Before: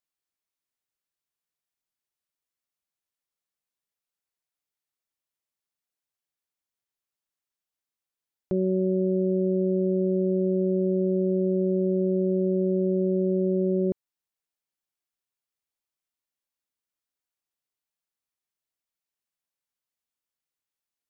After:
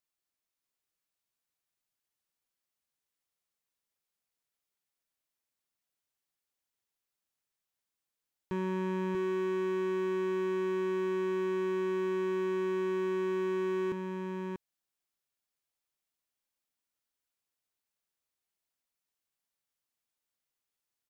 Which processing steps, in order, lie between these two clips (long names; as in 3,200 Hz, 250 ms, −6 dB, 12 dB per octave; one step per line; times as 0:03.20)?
gain into a clipping stage and back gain 29.5 dB
single-tap delay 639 ms −4.5 dB